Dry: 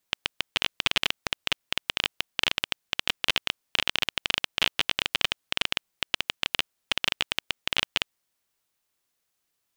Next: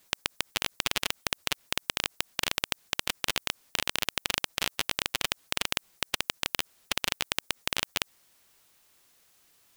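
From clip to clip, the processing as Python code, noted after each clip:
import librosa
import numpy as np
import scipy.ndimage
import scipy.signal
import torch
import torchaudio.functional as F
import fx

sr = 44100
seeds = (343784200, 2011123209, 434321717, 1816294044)

y = fx.spectral_comp(x, sr, ratio=2.0)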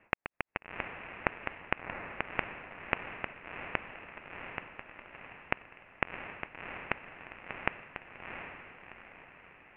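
y = scipy.signal.sosfilt(scipy.signal.cheby1(6, 3, 2700.0, 'lowpass', fs=sr, output='sos'), x)
y = fx.gate_flip(y, sr, shuts_db=-26.0, range_db=-29)
y = fx.echo_diffused(y, sr, ms=714, feedback_pct=45, wet_db=-6)
y = y * 10.0 ** (8.0 / 20.0)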